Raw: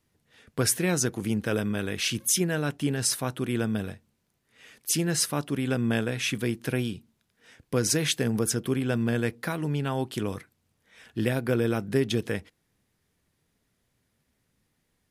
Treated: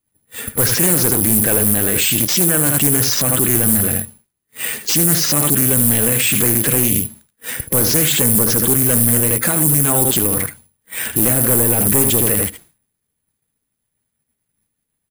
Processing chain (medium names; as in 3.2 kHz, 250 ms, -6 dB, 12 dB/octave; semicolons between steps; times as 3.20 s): coarse spectral quantiser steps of 15 dB; expander -55 dBFS; in parallel at -6 dB: sine folder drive 10 dB, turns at -10.5 dBFS; on the sum: delay 77 ms -10.5 dB; careless resampling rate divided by 4×, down filtered, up zero stuff; loudness maximiser +14.5 dB; loudspeaker Doppler distortion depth 0.32 ms